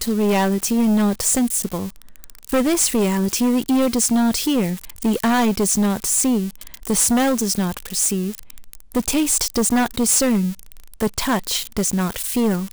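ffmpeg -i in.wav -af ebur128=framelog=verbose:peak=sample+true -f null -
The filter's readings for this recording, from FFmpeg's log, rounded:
Integrated loudness:
  I:         -19.0 LUFS
  Threshold: -29.4 LUFS
Loudness range:
  LRA:         1.5 LU
  Threshold: -39.3 LUFS
  LRA low:   -20.1 LUFS
  LRA high:  -18.6 LUFS
Sample peak:
  Peak:      -13.9 dBFS
True peak:
  Peak:       -9.4 dBFS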